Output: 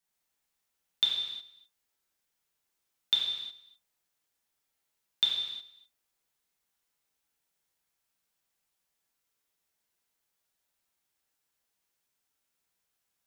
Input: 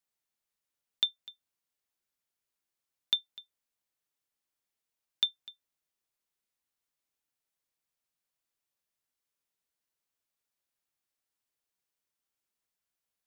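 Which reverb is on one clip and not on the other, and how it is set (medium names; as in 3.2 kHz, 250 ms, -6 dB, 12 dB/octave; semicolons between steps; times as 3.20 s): gated-style reverb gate 390 ms falling, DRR -4.5 dB; trim +1 dB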